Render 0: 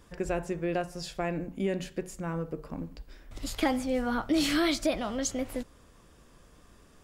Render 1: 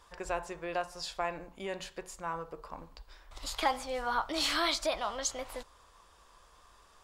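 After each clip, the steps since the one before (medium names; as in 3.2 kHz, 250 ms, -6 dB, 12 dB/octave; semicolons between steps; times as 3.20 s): graphic EQ 125/250/1000/4000/8000 Hz -9/-11/+12/+7/+3 dB; trim -5.5 dB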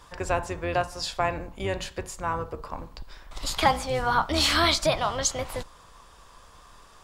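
octave divider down 2 oct, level +2 dB; trim +8 dB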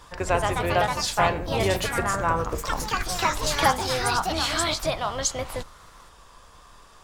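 gain riding within 5 dB 0.5 s; ever faster or slower copies 174 ms, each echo +3 st, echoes 3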